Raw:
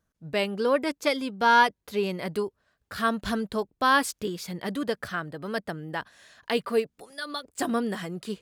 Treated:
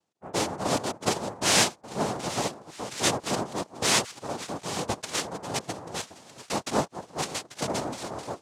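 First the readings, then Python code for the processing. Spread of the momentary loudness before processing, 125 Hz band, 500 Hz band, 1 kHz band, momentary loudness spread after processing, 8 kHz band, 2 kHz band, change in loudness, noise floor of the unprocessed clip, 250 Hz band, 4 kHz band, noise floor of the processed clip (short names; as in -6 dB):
13 LU, +3.0 dB, -3.5 dB, -4.5 dB, 13 LU, +13.0 dB, -4.5 dB, -1.0 dB, -80 dBFS, -3.0 dB, +5.0 dB, -57 dBFS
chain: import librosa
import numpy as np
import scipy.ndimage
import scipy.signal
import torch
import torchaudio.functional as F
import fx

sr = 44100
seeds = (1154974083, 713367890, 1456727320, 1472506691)

p1 = fx.dynamic_eq(x, sr, hz=1800.0, q=1.3, threshold_db=-37.0, ratio=4.0, max_db=3)
p2 = fx.tremolo_random(p1, sr, seeds[0], hz=3.5, depth_pct=55)
p3 = p2 + fx.echo_stepped(p2, sr, ms=419, hz=370.0, octaves=1.4, feedback_pct=70, wet_db=-8.0, dry=0)
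y = fx.noise_vocoder(p3, sr, seeds[1], bands=2)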